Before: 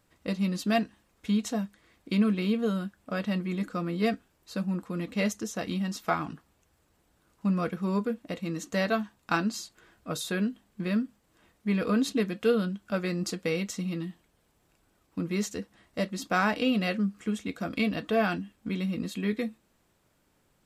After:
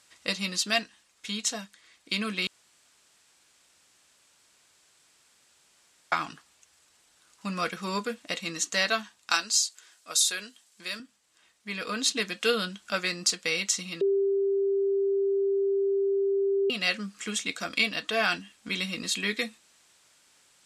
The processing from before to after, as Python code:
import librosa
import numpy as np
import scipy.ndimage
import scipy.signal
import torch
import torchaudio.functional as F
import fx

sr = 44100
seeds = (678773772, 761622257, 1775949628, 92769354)

y = fx.bass_treble(x, sr, bass_db=-12, treble_db=9, at=(9.3, 11.0))
y = fx.edit(y, sr, fx.room_tone_fill(start_s=2.47, length_s=3.65),
    fx.bleep(start_s=14.01, length_s=2.69, hz=394.0, db=-12.5), tone=tone)
y = fx.weighting(y, sr, curve='ITU-R 468')
y = fx.rider(y, sr, range_db=4, speed_s=0.5)
y = fx.low_shelf(y, sr, hz=110.0, db=11.5)